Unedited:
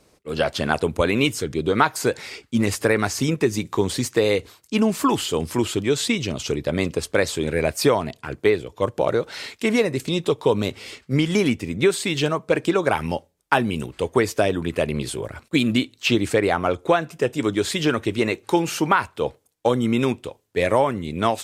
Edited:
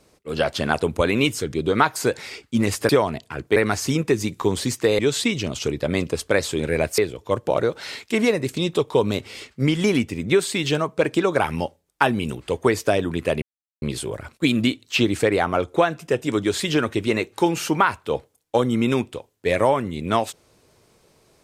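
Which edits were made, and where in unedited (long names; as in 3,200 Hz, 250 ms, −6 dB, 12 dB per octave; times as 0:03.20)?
0:04.32–0:05.83: remove
0:07.82–0:08.49: move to 0:02.89
0:14.93: splice in silence 0.40 s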